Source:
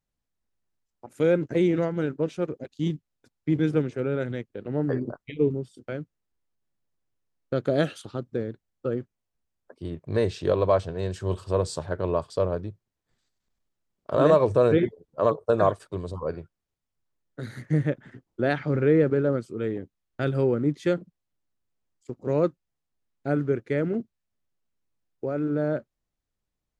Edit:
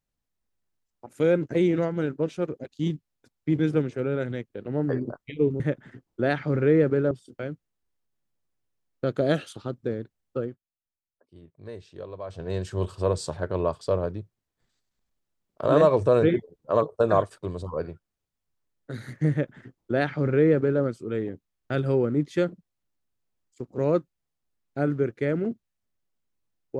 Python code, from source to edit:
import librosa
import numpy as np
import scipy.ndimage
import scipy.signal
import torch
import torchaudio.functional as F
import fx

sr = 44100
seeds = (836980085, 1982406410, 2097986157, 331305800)

y = fx.edit(x, sr, fx.fade_down_up(start_s=8.86, length_s=2.11, db=-16.0, fade_s=0.21),
    fx.duplicate(start_s=17.8, length_s=1.51, to_s=5.6), tone=tone)